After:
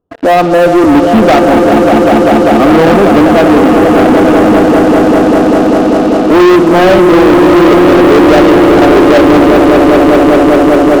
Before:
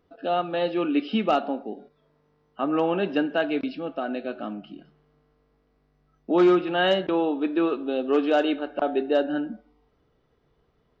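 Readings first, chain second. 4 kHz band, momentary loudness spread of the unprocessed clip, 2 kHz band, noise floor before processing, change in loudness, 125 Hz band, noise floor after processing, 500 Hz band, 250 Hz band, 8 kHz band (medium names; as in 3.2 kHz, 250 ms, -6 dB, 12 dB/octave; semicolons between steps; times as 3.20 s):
+15.5 dB, 12 LU, +20.0 dB, -68 dBFS, +19.5 dB, +25.5 dB, -8 dBFS, +21.0 dB, +22.0 dB, no reading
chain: boxcar filter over 21 samples; echo with a slow build-up 197 ms, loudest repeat 5, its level -7.5 dB; waveshaping leveller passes 5; trim +7.5 dB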